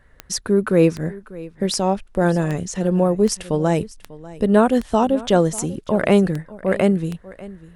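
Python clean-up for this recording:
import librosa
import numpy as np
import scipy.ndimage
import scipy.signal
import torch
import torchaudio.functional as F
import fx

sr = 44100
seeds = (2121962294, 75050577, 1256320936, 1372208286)

y = fx.fix_declick_ar(x, sr, threshold=10.0)
y = fx.fix_echo_inverse(y, sr, delay_ms=594, level_db=-19.0)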